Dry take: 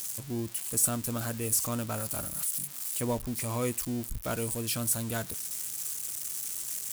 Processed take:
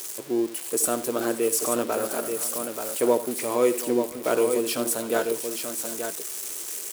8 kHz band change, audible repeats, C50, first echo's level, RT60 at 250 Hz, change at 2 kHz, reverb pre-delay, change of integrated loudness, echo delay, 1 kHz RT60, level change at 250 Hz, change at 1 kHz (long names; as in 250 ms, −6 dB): +2.0 dB, 4, no reverb audible, −15.0 dB, no reverb audible, +7.0 dB, no reverb audible, +5.0 dB, 74 ms, no reverb audible, +7.0 dB, +9.0 dB